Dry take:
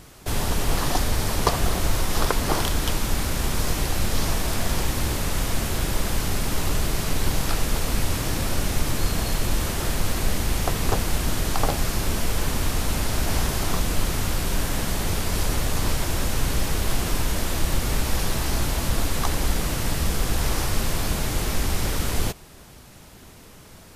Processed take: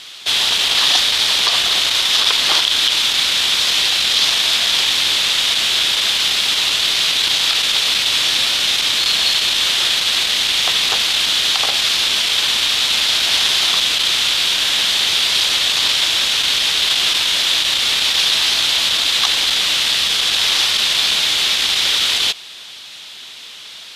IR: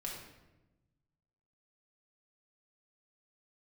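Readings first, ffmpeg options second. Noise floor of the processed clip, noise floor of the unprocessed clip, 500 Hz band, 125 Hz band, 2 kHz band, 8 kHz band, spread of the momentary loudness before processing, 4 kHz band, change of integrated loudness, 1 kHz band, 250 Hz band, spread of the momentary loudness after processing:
-35 dBFS, -46 dBFS, -3.0 dB, under -15 dB, +13.0 dB, +8.5 dB, 2 LU, +21.0 dB, +12.5 dB, +3.0 dB, -9.5 dB, 1 LU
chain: -af "asoftclip=type=tanh:threshold=-12dB,bandpass=f=3.5k:t=q:w=3.5:csg=0,alimiter=level_in=26.5dB:limit=-1dB:release=50:level=0:latency=1,volume=-1dB"

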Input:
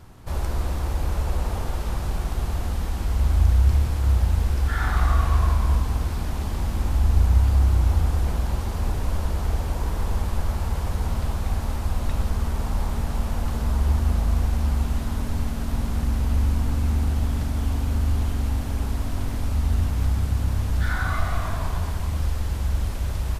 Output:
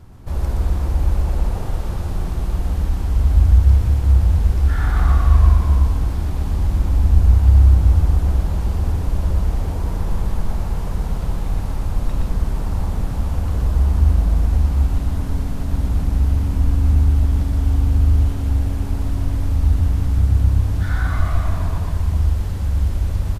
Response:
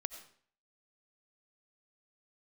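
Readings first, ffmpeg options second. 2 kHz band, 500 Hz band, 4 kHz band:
-1.5 dB, +1.5 dB, -2.0 dB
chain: -filter_complex "[0:a]lowshelf=f=460:g=8,asplit=2[a][b];[b]aecho=0:1:120:0.668[c];[a][c]amix=inputs=2:normalize=0,volume=-3.5dB"

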